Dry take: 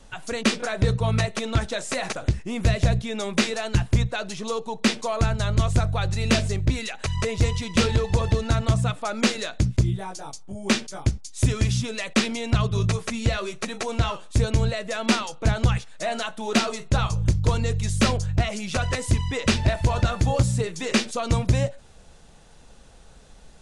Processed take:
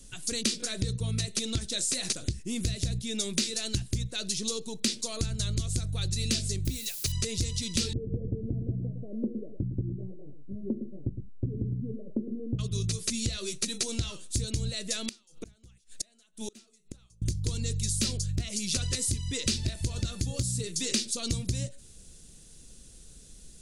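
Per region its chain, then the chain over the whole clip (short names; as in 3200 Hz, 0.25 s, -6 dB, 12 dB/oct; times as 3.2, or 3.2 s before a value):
6.65–7.12 expander -27 dBFS + requantised 8-bit, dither triangular
7.93–12.59 steep low-pass 580 Hz 48 dB/oct + bell 65 Hz -12 dB 0.72 oct + echo 0.11 s -10 dB
15.05–17.22 bell 120 Hz -6.5 dB 0.5 oct + flipped gate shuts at -22 dBFS, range -31 dB
whole clip: EQ curve 350 Hz 0 dB, 820 Hz -18 dB, 9900 Hz +13 dB; compressor 4:1, threshold -26 dBFS; dynamic EQ 4400 Hz, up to +7 dB, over -48 dBFS, Q 1.6; gain -2 dB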